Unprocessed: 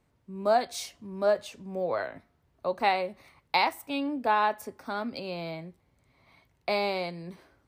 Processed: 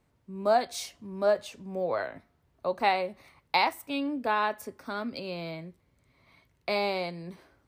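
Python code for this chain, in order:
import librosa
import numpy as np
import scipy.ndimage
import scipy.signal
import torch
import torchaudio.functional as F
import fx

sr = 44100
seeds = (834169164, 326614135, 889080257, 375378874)

y = fx.peak_eq(x, sr, hz=790.0, db=-6.0, octaves=0.4, at=(3.73, 6.76))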